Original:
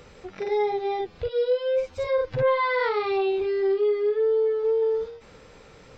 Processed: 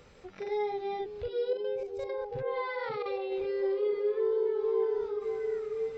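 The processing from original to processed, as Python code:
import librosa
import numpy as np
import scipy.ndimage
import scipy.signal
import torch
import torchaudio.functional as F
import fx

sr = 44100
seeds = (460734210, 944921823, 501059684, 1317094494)

y = fx.level_steps(x, sr, step_db=14, at=(1.53, 3.32))
y = fx.echo_stepped(y, sr, ms=541, hz=230.0, octaves=0.7, feedback_pct=70, wet_db=-1.0)
y = y * librosa.db_to_amplitude(-7.5)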